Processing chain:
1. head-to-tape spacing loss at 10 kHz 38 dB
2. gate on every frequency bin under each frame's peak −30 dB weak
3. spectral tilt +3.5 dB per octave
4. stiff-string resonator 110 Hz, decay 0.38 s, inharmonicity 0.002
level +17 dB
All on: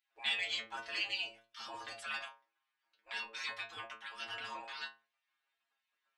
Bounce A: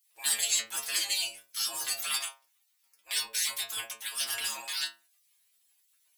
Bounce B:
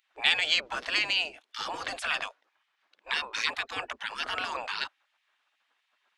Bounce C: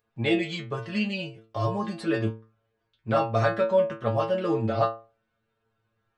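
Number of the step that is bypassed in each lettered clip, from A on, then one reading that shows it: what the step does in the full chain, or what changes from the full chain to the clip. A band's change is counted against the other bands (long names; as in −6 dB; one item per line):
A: 1, 8 kHz band +26.0 dB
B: 4, change in crest factor +3.5 dB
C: 2, change in crest factor −5.0 dB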